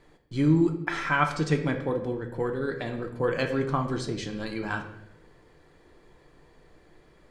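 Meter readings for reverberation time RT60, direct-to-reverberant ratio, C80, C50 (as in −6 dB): 0.90 s, 4.0 dB, 11.5 dB, 9.0 dB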